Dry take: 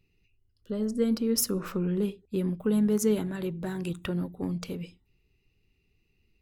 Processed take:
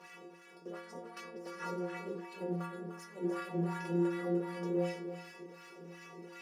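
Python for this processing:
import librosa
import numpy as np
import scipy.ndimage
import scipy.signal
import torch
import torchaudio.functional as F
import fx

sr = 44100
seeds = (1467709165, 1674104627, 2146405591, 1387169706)

p1 = fx.bin_compress(x, sr, power=0.4)
p2 = fx.highpass(p1, sr, hz=100.0, slope=6)
p3 = fx.low_shelf(p2, sr, hz=160.0, db=-6.0)
p4 = fx.hum_notches(p3, sr, base_hz=50, count=4)
p5 = fx.over_compress(p4, sr, threshold_db=-29.0, ratio=-0.5)
p6 = fx.leveller(p5, sr, passes=5)
p7 = fx.wah_lfo(p6, sr, hz=2.7, low_hz=350.0, high_hz=1900.0, q=2.2)
p8 = fx.stiff_resonator(p7, sr, f0_hz=170.0, decay_s=0.68, stiffness=0.008)
y = p8 + fx.echo_single(p8, sr, ms=300, db=-8.5, dry=0)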